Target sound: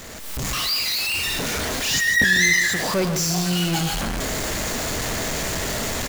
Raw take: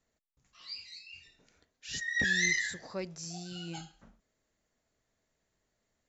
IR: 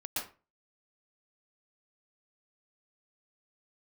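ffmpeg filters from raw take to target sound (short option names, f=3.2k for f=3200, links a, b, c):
-filter_complex "[0:a]aeval=exprs='val(0)+0.5*0.0316*sgn(val(0))':c=same,dynaudnorm=f=190:g=3:m=13dB,asplit=2[a][b];[b]aecho=0:1:147:0.316[c];[a][c]amix=inputs=2:normalize=0,volume=-2.5dB"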